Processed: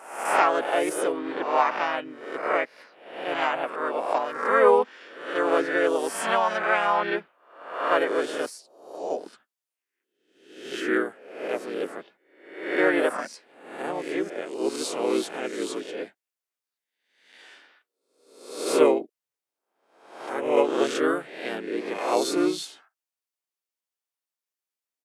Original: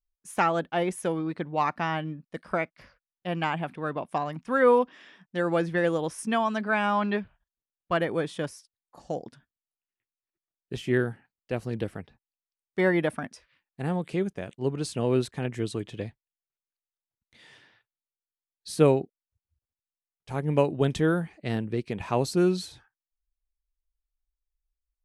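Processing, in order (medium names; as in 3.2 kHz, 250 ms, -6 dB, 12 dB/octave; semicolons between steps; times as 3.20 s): reverse spectral sustain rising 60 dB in 0.74 s; high-pass 340 Hz 24 dB/octave; band-stop 4 kHz, Q 16; harmony voices -3 st -2 dB, +4 st -13 dB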